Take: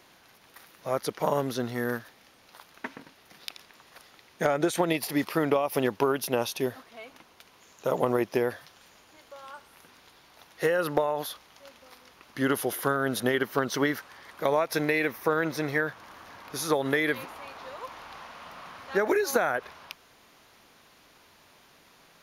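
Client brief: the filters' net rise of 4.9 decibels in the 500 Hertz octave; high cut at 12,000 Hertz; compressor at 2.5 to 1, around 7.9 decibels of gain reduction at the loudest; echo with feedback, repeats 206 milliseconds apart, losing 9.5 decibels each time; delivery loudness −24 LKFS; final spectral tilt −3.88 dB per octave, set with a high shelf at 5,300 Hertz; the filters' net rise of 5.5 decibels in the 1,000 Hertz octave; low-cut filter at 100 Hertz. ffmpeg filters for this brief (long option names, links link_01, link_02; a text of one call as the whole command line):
ffmpeg -i in.wav -af "highpass=100,lowpass=12000,equalizer=frequency=500:width_type=o:gain=4.5,equalizer=frequency=1000:width_type=o:gain=6,highshelf=frequency=5300:gain=-8.5,acompressor=threshold=-27dB:ratio=2.5,aecho=1:1:206|412|618|824:0.335|0.111|0.0365|0.012,volume=7dB" out.wav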